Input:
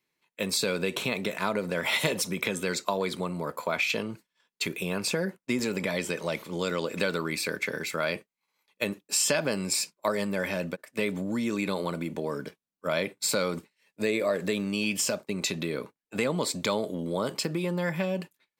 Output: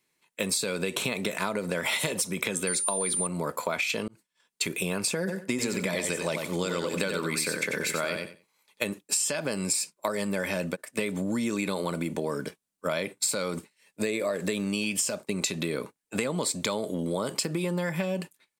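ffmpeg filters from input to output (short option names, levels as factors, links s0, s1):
-filter_complex "[0:a]asettb=1/sr,asplit=3[s0][s1][s2];[s0]atrim=end=2.674[s3];[s1]atrim=start=2.67:end=3.27,asetpts=PTS-STARTPTS,afade=t=in:d=0.004:c=qsin,afade=t=out:st=0.596:d=0.004:c=qsin,aeval=exprs='val(0)+0.0224*sin(2*PI*9200*n/s)':c=same[s4];[s2]atrim=start=3.266[s5];[s3][s4]acrossfade=d=0.004:c1=hsin:c2=qsin[s6];[s6][s5]acrossfade=d=0.004:c1=qsin:c2=hsin,asplit=3[s7][s8][s9];[s7]afade=t=out:st=5.27:d=0.02[s10];[s8]aecho=1:1:92|184|276:0.501|0.0852|0.0145,afade=t=in:st=5.27:d=0.02,afade=t=out:st=8.88:d=0.02[s11];[s9]afade=t=in:st=8.88:d=0.02[s12];[s10][s11][s12]amix=inputs=3:normalize=0,asplit=2[s13][s14];[s13]atrim=end=4.08,asetpts=PTS-STARTPTS,afade=t=out:st=4.076:d=0.004:c=hsin[s15];[s14]atrim=start=4.08,asetpts=PTS-STARTPTS,afade=t=in:d=0.68:c=qsin[s16];[s15][s16]concat=n=2:v=0:a=1,equalizer=f=8900:w=1.4:g=8.5,acompressor=threshold=0.0355:ratio=6,volume=1.58"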